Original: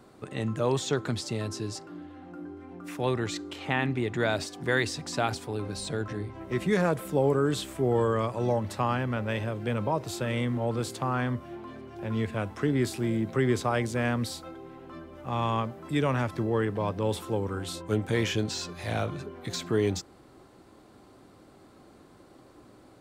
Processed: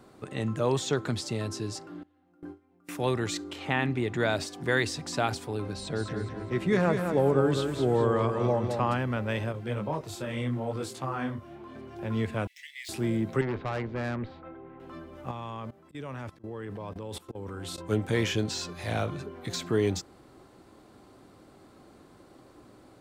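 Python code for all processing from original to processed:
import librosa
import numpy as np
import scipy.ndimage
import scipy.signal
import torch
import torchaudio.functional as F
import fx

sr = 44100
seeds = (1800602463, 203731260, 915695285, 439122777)

y = fx.chain(x, sr, fx.gate_hold(open_db=-32.0, close_db=-36.0, hold_ms=71.0, range_db=-21, attack_ms=1.4, release_ms=100.0),
    fx.high_shelf(hz=6700.0, db=6.5), at=(2.03, 3.44))
y = fx.chain(y, sr, fx.high_shelf(hz=7100.0, db=-11.0),
    fx.echo_feedback(ms=205, feedback_pct=36, wet_db=-6), at=(5.73, 8.94))
y = fx.chain(y, sr, fx.clip_hard(threshold_db=-17.0),
    fx.detune_double(cents=28), at=(9.52, 11.75))
y = fx.chain(y, sr, fx.median_filter(points=5),
    fx.steep_highpass(hz=1900.0, slope=96), at=(12.47, 12.89))
y = fx.chain(y, sr, fx.lowpass(hz=2400.0, slope=24),
    fx.tube_stage(drive_db=27.0, bias=0.5), at=(13.41, 14.8))
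y = fx.chain(y, sr, fx.auto_swell(attack_ms=146.0),
    fx.level_steps(step_db=19), at=(15.31, 17.78))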